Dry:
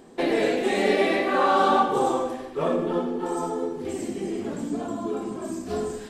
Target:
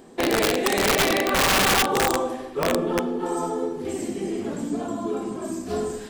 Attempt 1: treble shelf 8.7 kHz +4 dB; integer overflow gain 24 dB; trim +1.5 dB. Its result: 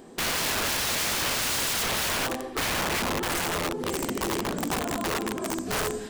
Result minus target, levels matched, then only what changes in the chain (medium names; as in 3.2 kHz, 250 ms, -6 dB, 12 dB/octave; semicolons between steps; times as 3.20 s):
integer overflow: distortion +16 dB
change: integer overflow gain 15 dB